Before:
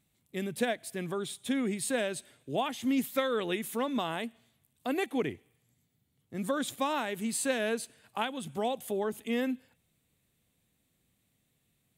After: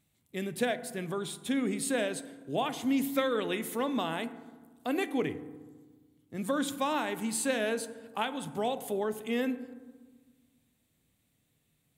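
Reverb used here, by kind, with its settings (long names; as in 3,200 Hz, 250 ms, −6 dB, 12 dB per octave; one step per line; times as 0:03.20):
feedback delay network reverb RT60 1.4 s, low-frequency decay 1.4×, high-frequency decay 0.3×, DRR 11 dB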